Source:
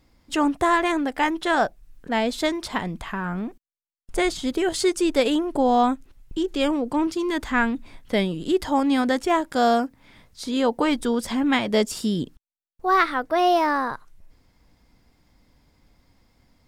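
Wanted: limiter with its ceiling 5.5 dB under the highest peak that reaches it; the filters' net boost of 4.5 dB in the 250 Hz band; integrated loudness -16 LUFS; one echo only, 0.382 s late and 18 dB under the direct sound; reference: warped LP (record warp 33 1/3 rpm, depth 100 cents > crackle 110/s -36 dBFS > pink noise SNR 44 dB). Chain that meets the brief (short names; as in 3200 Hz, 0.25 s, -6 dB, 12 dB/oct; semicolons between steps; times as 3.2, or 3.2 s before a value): bell 250 Hz +5.5 dB; limiter -11 dBFS; echo 0.382 s -18 dB; record warp 33 1/3 rpm, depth 100 cents; crackle 110/s -36 dBFS; pink noise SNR 44 dB; gain +6 dB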